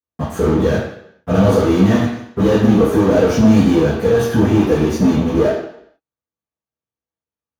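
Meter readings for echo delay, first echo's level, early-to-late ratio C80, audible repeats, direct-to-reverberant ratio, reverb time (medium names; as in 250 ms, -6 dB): no echo, no echo, 6.5 dB, no echo, -12.5 dB, 0.70 s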